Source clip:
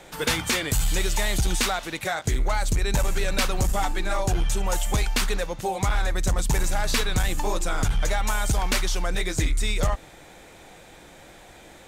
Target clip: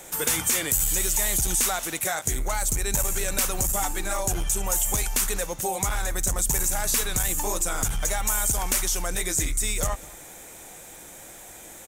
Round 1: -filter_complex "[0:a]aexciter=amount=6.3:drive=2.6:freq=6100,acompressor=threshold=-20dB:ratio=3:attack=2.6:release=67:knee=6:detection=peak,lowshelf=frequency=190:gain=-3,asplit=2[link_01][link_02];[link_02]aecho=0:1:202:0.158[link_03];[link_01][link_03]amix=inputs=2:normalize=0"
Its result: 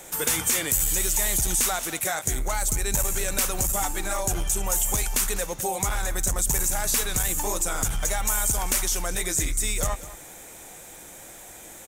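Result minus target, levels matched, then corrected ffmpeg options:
echo-to-direct +7 dB
-filter_complex "[0:a]aexciter=amount=6.3:drive=2.6:freq=6100,acompressor=threshold=-20dB:ratio=3:attack=2.6:release=67:knee=6:detection=peak,lowshelf=frequency=190:gain=-3,asplit=2[link_01][link_02];[link_02]aecho=0:1:202:0.0708[link_03];[link_01][link_03]amix=inputs=2:normalize=0"

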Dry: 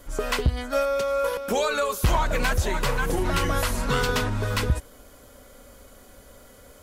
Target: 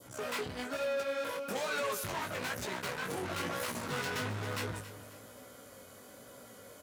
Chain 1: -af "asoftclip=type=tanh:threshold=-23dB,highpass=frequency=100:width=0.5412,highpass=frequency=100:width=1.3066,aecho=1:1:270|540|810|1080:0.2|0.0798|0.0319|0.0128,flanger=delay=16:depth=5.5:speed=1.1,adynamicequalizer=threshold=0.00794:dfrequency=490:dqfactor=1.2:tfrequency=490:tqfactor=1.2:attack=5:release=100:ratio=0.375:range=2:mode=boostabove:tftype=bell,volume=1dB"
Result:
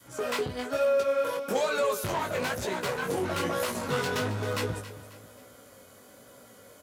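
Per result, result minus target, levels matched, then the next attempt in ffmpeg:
soft clipping: distortion −6 dB; 2,000 Hz band −3.0 dB
-af "asoftclip=type=tanh:threshold=-32dB,highpass=frequency=100:width=0.5412,highpass=frequency=100:width=1.3066,aecho=1:1:270|540|810|1080:0.2|0.0798|0.0319|0.0128,flanger=delay=16:depth=5.5:speed=1.1,adynamicequalizer=threshold=0.00794:dfrequency=490:dqfactor=1.2:tfrequency=490:tqfactor=1.2:attack=5:release=100:ratio=0.375:range=2:mode=boostabove:tftype=bell,volume=1dB"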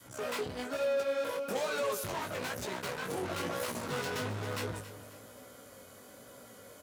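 2,000 Hz band −2.5 dB
-af "asoftclip=type=tanh:threshold=-32dB,highpass=frequency=100:width=0.5412,highpass=frequency=100:width=1.3066,aecho=1:1:270|540|810|1080:0.2|0.0798|0.0319|0.0128,flanger=delay=16:depth=5.5:speed=1.1,adynamicequalizer=threshold=0.00794:dfrequency=1900:dqfactor=1.2:tfrequency=1900:tqfactor=1.2:attack=5:release=100:ratio=0.375:range=2:mode=boostabove:tftype=bell,volume=1dB"

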